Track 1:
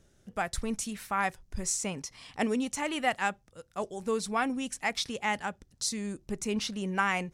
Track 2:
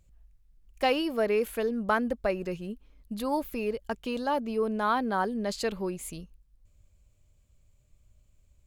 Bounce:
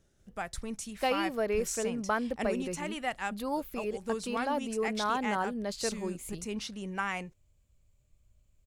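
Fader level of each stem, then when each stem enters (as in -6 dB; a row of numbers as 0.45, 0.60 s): -5.5, -4.0 dB; 0.00, 0.20 s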